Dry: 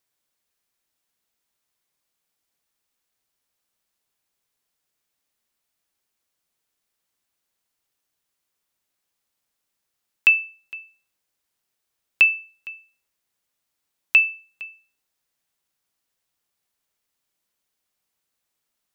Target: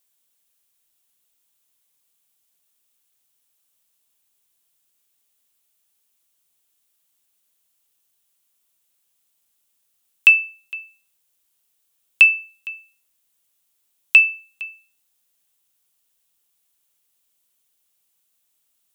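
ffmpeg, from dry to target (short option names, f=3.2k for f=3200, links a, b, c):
-af "aexciter=amount=2.4:drive=2.5:freq=2.7k"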